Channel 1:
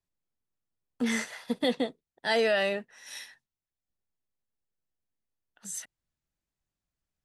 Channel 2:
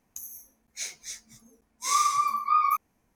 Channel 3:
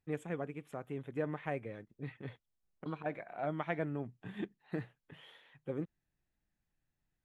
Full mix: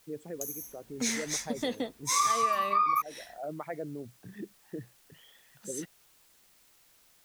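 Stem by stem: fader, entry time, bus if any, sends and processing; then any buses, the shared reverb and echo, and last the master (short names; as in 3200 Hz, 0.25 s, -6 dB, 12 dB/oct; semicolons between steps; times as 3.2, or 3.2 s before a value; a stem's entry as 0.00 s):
-3.0 dB, 0.00 s, no send, requantised 10-bit, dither triangular
+1.5 dB, 0.25 s, no send, AGC gain up to 5 dB
-1.5 dB, 0.00 s, no send, formant sharpening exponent 2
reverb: off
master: compressor 2.5:1, threshold -28 dBFS, peak gain reduction 10.5 dB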